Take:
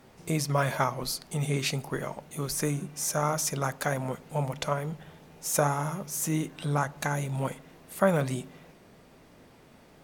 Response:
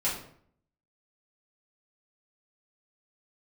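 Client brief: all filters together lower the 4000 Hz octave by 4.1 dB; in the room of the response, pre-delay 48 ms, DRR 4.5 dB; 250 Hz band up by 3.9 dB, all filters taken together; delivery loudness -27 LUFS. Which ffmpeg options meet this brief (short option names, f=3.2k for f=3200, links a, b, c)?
-filter_complex "[0:a]equalizer=f=250:t=o:g=6,equalizer=f=4k:t=o:g=-5.5,asplit=2[a][b];[1:a]atrim=start_sample=2205,adelay=48[c];[b][c]afir=irnorm=-1:irlink=0,volume=-12.5dB[d];[a][d]amix=inputs=2:normalize=0,volume=0.5dB"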